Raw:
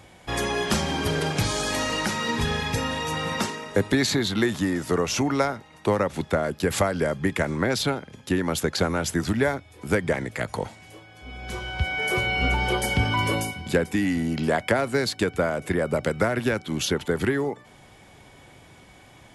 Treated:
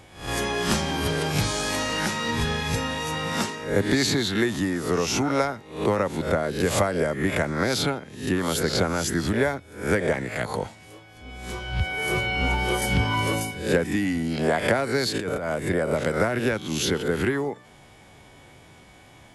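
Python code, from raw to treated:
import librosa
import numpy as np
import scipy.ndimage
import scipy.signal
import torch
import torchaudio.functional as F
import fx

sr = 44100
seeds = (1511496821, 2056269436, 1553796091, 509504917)

y = fx.spec_swells(x, sr, rise_s=0.47)
y = fx.over_compress(y, sr, threshold_db=-26.0, ratio=-1.0, at=(15.14, 15.56))
y = y * 10.0 ** (-1.5 / 20.0)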